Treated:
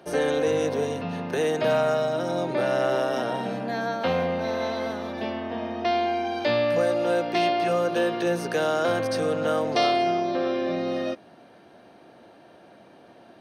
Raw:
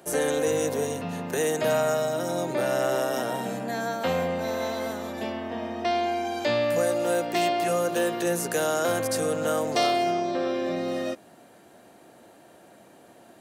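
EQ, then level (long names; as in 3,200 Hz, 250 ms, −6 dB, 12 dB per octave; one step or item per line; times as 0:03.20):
Savitzky-Golay smoothing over 15 samples
notch filter 1,900 Hz, Q 29
+1.5 dB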